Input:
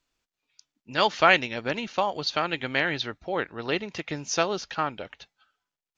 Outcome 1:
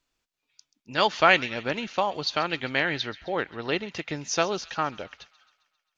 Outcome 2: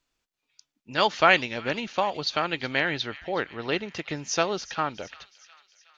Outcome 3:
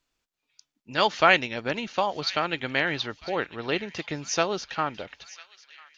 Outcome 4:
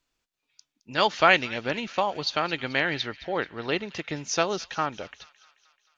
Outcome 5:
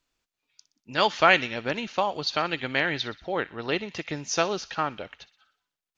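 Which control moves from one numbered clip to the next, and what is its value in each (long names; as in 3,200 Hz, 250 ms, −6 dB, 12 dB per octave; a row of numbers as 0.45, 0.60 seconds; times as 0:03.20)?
delay with a high-pass on its return, delay time: 133, 368, 998, 217, 61 milliseconds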